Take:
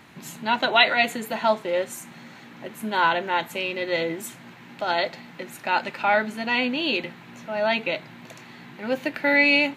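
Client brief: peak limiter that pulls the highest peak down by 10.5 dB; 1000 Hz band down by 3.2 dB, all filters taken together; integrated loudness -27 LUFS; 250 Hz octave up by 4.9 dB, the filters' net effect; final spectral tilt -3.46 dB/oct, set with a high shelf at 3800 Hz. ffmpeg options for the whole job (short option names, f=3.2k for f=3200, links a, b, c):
-af "equalizer=f=250:t=o:g=6,equalizer=f=1k:t=o:g=-5,highshelf=f=3.8k:g=5,volume=-1dB,alimiter=limit=-14.5dB:level=0:latency=1"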